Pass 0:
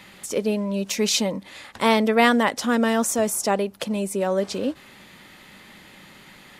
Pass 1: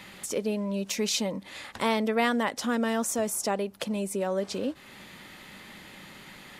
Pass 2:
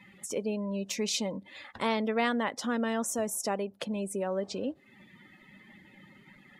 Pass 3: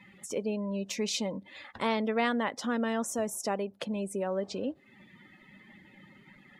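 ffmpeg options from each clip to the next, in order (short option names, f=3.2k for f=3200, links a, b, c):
-af "acompressor=threshold=-36dB:ratio=1.5"
-af "afftdn=nr=19:nf=-44,volume=-3dB"
-af "highshelf=f=7.3k:g=-5.5"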